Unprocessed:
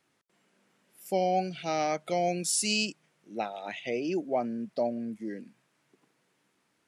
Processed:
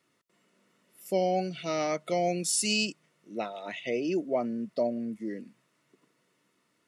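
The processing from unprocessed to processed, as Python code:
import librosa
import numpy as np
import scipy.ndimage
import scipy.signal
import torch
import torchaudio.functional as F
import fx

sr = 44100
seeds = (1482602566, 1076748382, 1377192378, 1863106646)

y = fx.notch_comb(x, sr, f0_hz=800.0)
y = F.gain(torch.from_numpy(y), 1.5).numpy()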